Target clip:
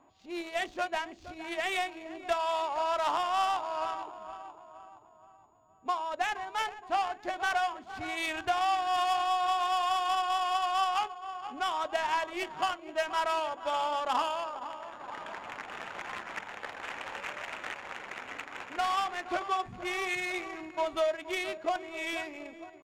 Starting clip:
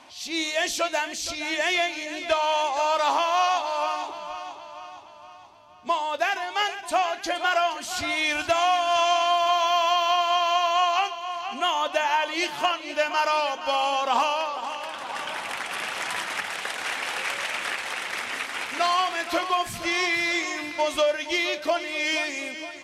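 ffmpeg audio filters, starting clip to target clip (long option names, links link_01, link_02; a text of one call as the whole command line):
ffmpeg -i in.wav -af "aeval=exprs='val(0)+0.0126*sin(2*PI*6500*n/s)':channel_layout=same,asetrate=46722,aresample=44100,atempo=0.943874,adynamicsmooth=sensitivity=1.5:basefreq=850,volume=-6dB" out.wav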